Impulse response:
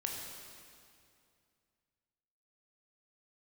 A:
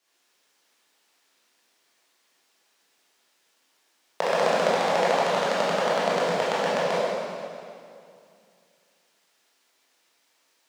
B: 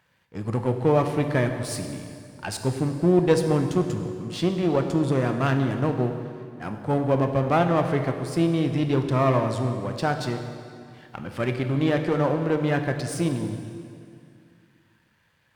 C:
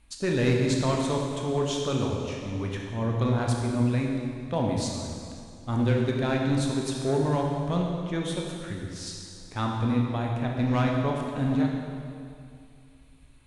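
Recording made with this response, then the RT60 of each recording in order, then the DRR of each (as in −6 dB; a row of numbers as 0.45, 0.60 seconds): C; 2.4, 2.4, 2.4 seconds; −9.0, 5.5, −0.5 decibels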